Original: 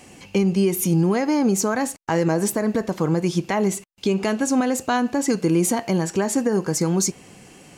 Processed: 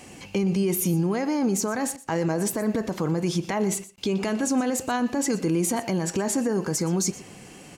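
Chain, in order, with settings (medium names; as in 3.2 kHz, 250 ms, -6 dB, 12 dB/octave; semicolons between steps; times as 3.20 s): peak limiter -17.5 dBFS, peak gain reduction 6.5 dB; on a send: delay 120 ms -17.5 dB; on the sum: trim +1 dB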